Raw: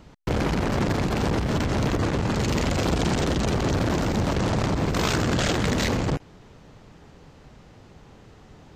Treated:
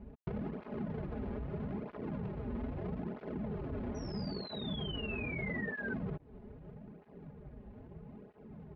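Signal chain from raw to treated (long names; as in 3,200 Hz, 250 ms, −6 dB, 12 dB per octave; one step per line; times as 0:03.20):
running median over 41 samples
high-shelf EQ 4,000 Hz −11.5 dB
comb filter 4.8 ms, depth 52%
brickwall limiter −20.5 dBFS, peak gain reduction 8 dB
downward compressor 6 to 1, threshold −36 dBFS, peak gain reduction 11.5 dB
sound drawn into the spectrogram fall, 0:03.95–0:05.94, 1,500–5,900 Hz −38 dBFS
high-frequency loss of the air 310 metres
through-zero flanger with one copy inverted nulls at 0.78 Hz, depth 6.8 ms
level +2 dB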